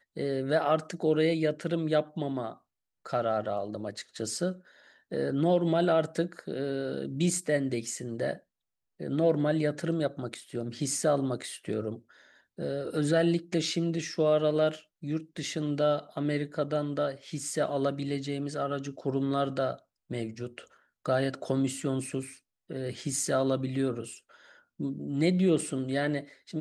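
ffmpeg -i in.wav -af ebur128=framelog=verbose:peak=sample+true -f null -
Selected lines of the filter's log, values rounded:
Integrated loudness:
  I:         -30.2 LUFS
  Threshold: -40.6 LUFS
Loudness range:
  LRA:         3.8 LU
  Threshold: -50.9 LUFS
  LRA low:   -32.9 LUFS
  LRA high:  -29.1 LUFS
Sample peak:
  Peak:      -13.1 dBFS
True peak:
  Peak:      -13.1 dBFS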